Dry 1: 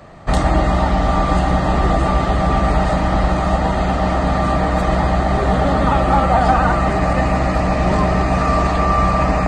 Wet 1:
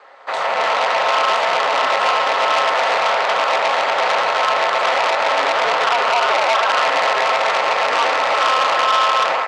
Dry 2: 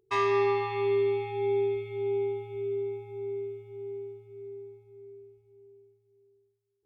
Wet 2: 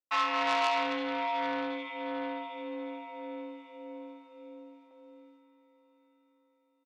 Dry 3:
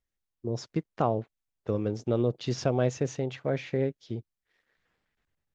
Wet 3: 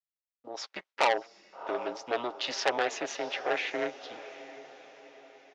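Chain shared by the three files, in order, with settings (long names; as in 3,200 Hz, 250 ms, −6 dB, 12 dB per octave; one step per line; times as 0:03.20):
low-pass filter 4,400 Hz 12 dB per octave
notch filter 930 Hz, Q 14
noise gate with hold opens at −48 dBFS
high-pass filter 680 Hz 24 dB per octave
comb filter 7.4 ms, depth 40%
brickwall limiter −13.5 dBFS
automatic gain control gain up to 9 dB
ring modulation 120 Hz
feedback delay with all-pass diffusion 709 ms, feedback 47%, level −16 dB
saturating transformer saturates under 2,700 Hz
level +3 dB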